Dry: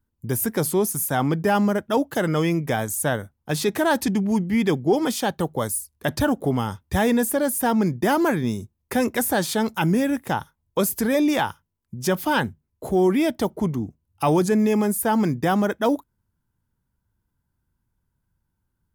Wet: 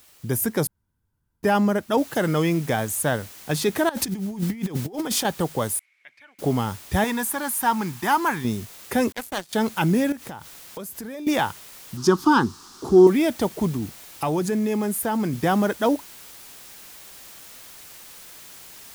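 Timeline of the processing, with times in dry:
0:00.67–0:01.43: fill with room tone
0:01.98: noise floor change −54 dB −44 dB
0:03.89–0:05.25: compressor whose output falls as the input rises −26 dBFS, ratio −0.5
0:05.79–0:06.39: resonant band-pass 2,200 Hz, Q 18
0:07.04–0:08.45: low shelf with overshoot 730 Hz −6.5 dB, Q 3
0:09.12–0:09.53: power curve on the samples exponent 3
0:10.12–0:11.27: downward compressor 8 to 1, threshold −32 dBFS
0:11.97–0:13.07: drawn EQ curve 160 Hz 0 dB, 350 Hz +10 dB, 590 Hz −14 dB, 840 Hz +2 dB, 1,200 Hz +10 dB, 2,100 Hz −12 dB, 3,500 Hz −2 dB, 5,100 Hz +5 dB, 14,000 Hz −13 dB
0:13.76–0:15.33: downward compressor 2 to 1, threshold −23 dBFS

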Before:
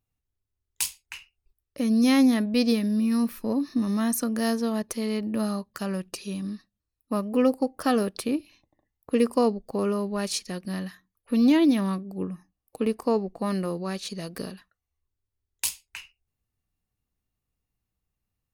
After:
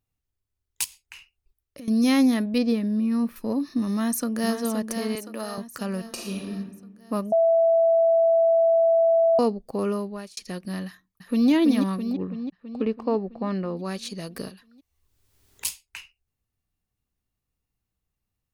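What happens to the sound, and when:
0:00.84–0:01.88: downward compressor, threshold −38 dBFS
0:02.58–0:03.36: high-shelf EQ 2,900 Hz −11.5 dB
0:03.91–0:04.55: delay throw 520 ms, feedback 55%, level −7 dB
0:05.15–0:05.58: high-pass filter 420 Hz
0:06.08–0:06.50: thrown reverb, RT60 1.1 s, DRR −1.5 dB
0:07.32–0:09.39: beep over 662 Hz −15.5 dBFS
0:09.95–0:10.37: fade out
0:10.87–0:11.50: delay throw 330 ms, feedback 65%, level −4.5 dB
0:12.13–0:13.77: high-frequency loss of the air 200 metres
0:14.48–0:15.65: multiband upward and downward compressor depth 100%

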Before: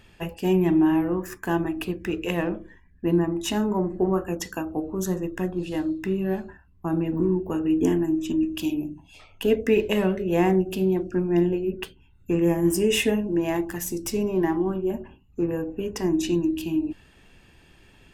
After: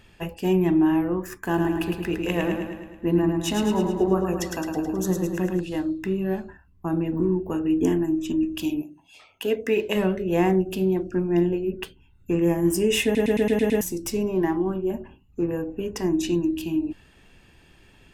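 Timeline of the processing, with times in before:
0:01.39–0:05.61: repeating echo 107 ms, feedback 57%, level −5 dB
0:08.81–0:09.94: high-pass filter 800 Hz → 270 Hz 6 dB per octave
0:13.04: stutter in place 0.11 s, 7 plays

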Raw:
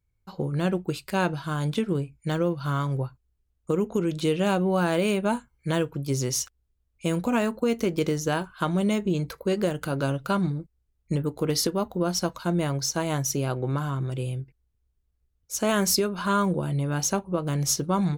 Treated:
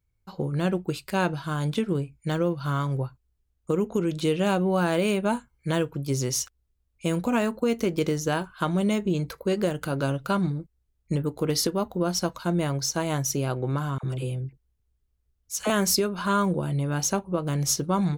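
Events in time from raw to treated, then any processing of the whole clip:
0:13.98–0:15.70: all-pass dispersion lows, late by 53 ms, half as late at 810 Hz

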